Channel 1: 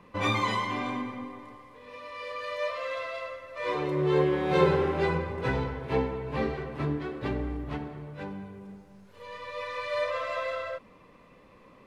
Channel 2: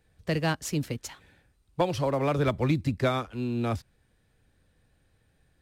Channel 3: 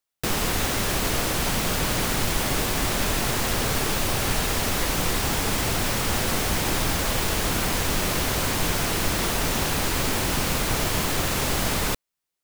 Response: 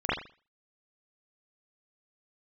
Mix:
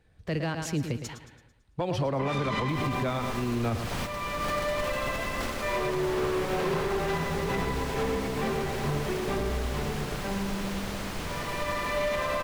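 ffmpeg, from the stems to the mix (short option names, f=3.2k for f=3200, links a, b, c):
-filter_complex "[0:a]aecho=1:1:5:0.81,asoftclip=type=hard:threshold=-25.5dB,adelay=2050,volume=1dB,asplit=2[a][b];[b]volume=-5dB[c];[1:a]volume=3dB,asplit=3[d][e][f];[e]volume=-12dB[g];[2:a]adelay=2450,volume=-1dB,afade=t=in:st=3.82:d=0.52:silence=0.298538,asplit=2[h][i];[i]volume=-9.5dB[j];[f]apad=whole_len=656481[k];[h][k]sidechaingate=range=-33dB:threshold=-60dB:ratio=16:detection=peak[l];[c][g][j]amix=inputs=3:normalize=0,aecho=0:1:111|222|333|444|555|666:1|0.46|0.212|0.0973|0.0448|0.0206[m];[a][d][l][m]amix=inputs=4:normalize=0,highshelf=f=6.5k:g=-11,alimiter=limit=-20.5dB:level=0:latency=1:release=67"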